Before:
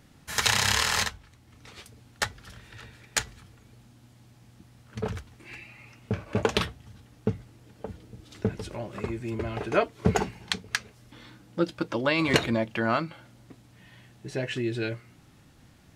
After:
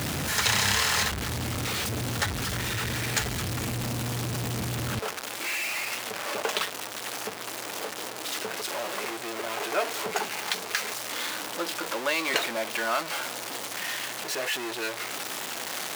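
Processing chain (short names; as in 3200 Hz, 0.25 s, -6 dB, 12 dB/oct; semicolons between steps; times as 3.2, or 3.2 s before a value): zero-crossing step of -19.5 dBFS; HPF 68 Hz 12 dB/oct, from 4.99 s 550 Hz; gain -4.5 dB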